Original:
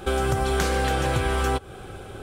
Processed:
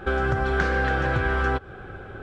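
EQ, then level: dynamic EQ 5300 Hz, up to +4 dB, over -49 dBFS, Q 1.2; tape spacing loss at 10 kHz 29 dB; bell 1600 Hz +11 dB 0.58 oct; 0.0 dB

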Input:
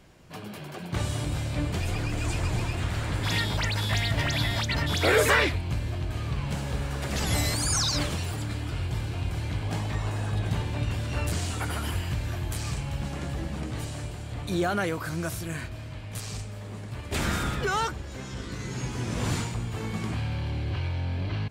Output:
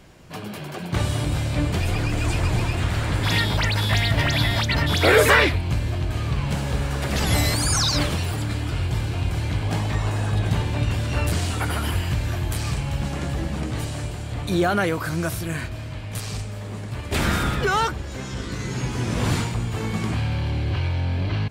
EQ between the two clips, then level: dynamic EQ 7000 Hz, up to -4 dB, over -47 dBFS, Q 1.6; +6.0 dB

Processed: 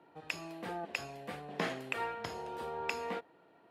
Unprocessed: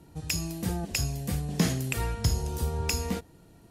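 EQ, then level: HPF 580 Hz 12 dB/oct; dynamic EQ 7900 Hz, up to +7 dB, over -47 dBFS, Q 0.85; air absorption 500 m; +3.5 dB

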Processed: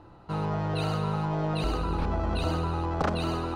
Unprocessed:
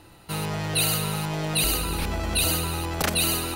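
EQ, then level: air absorption 140 m; resonant high shelf 1600 Hz -8.5 dB, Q 1.5; 0.0 dB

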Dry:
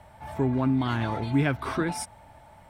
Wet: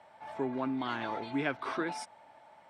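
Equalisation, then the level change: BPF 330–5700 Hz; -4.0 dB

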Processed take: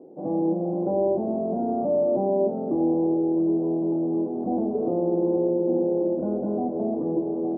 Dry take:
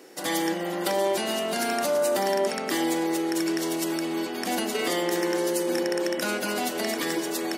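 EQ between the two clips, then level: steep low-pass 760 Hz 36 dB/oct; air absorption 270 m; low shelf 230 Hz +10.5 dB; +1.5 dB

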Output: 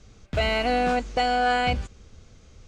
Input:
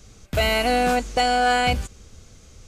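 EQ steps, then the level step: air absorption 99 m; -2.5 dB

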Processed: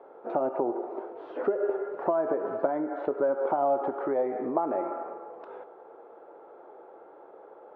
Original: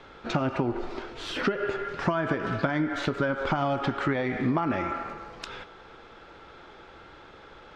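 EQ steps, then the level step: Butterworth band-pass 570 Hz, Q 1.2; +4.5 dB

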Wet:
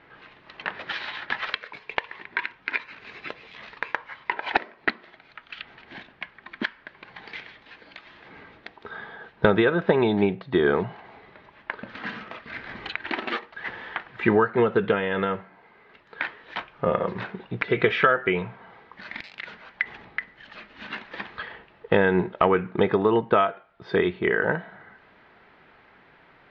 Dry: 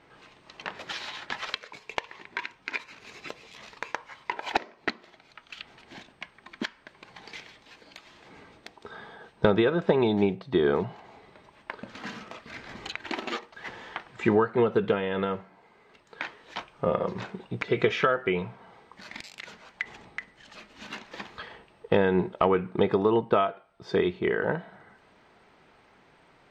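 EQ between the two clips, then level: LPF 4100 Hz 24 dB/oct; bell 1700 Hz +6 dB 0.8 oct; +2.0 dB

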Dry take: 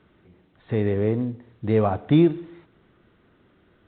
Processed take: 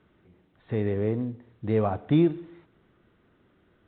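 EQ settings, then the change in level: air absorption 63 m; -4.0 dB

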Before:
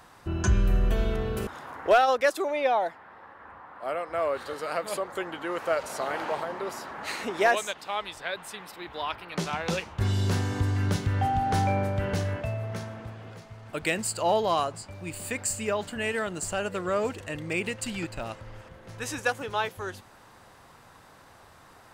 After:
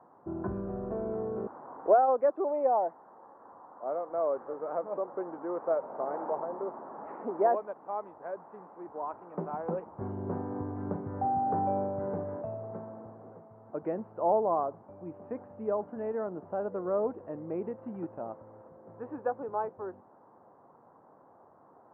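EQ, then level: HPF 240 Hz 12 dB/oct; LPF 1000 Hz 24 dB/oct; air absorption 380 m; 0.0 dB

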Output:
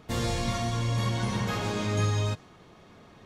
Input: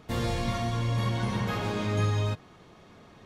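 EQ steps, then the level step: dynamic EQ 7000 Hz, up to +7 dB, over -58 dBFS, Q 0.91; 0.0 dB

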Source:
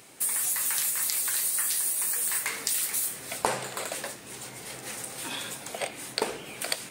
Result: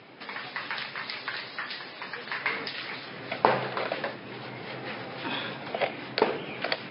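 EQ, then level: HPF 100 Hz 24 dB/oct; brick-wall FIR low-pass 5300 Hz; air absorption 230 m; +6.5 dB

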